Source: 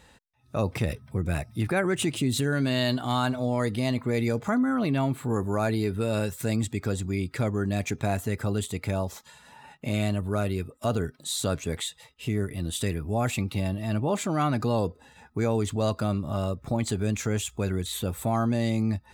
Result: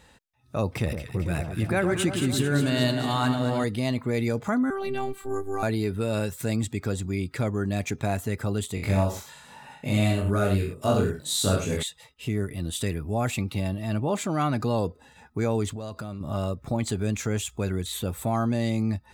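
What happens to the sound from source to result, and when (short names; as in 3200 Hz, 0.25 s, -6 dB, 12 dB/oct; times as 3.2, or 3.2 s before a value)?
0.68–3.64 echo with dull and thin repeats by turns 0.111 s, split 1300 Hz, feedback 78%, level -6 dB
4.7–5.63 robotiser 389 Hz
8.75–11.83 reverse bouncing-ball echo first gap 20 ms, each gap 1.1×, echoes 5, each echo -2 dB
15.72–16.21 compressor 12:1, threshold -31 dBFS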